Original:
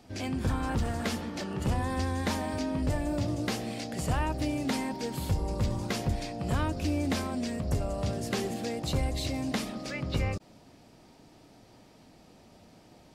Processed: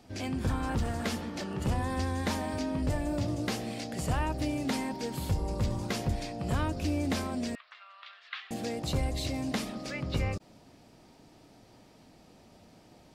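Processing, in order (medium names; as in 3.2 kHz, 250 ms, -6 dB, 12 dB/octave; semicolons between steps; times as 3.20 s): 7.55–8.51 s: elliptic band-pass 1.2–3.7 kHz, stop band 70 dB; trim -1 dB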